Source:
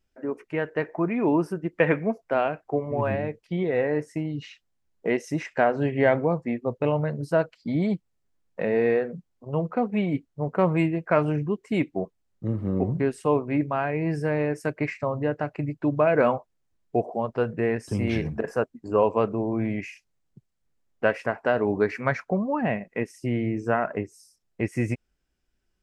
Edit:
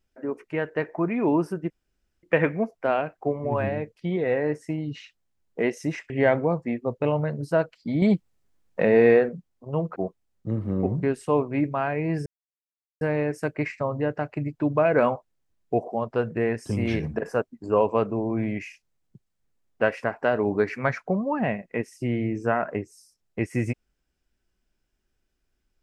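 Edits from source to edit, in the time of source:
1.70 s: insert room tone 0.53 s
5.57–5.90 s: delete
7.82–9.09 s: gain +5.5 dB
9.76–11.93 s: delete
14.23 s: insert silence 0.75 s

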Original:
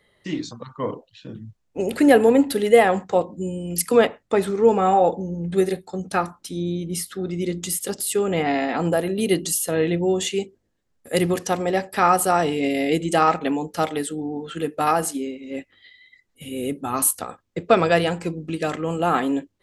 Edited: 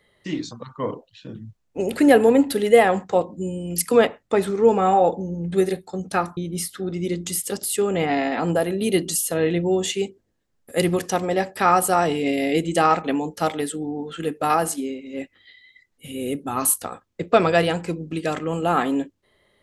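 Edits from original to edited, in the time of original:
6.37–6.74 s: delete

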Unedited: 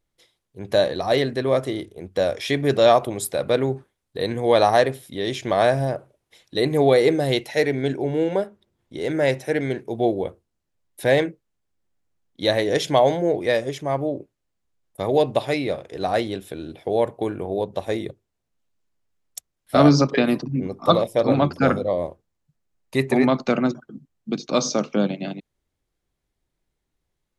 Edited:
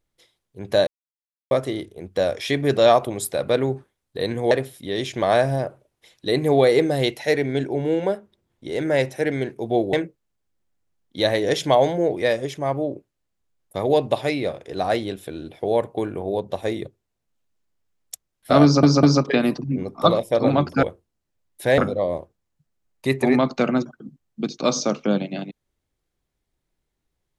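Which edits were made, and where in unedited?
0.87–1.51 s: mute
4.51–4.80 s: delete
10.22–11.17 s: move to 21.67 s
19.87 s: stutter 0.20 s, 3 plays

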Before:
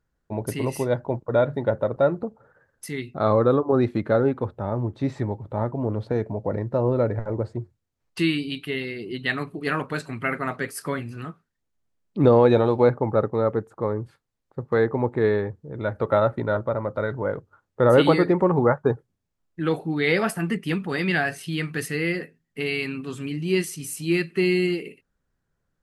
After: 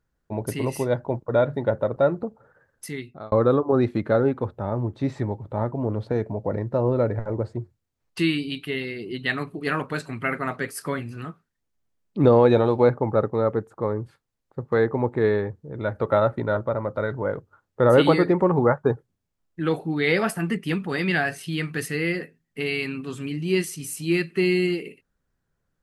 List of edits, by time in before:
2.86–3.32 s: fade out

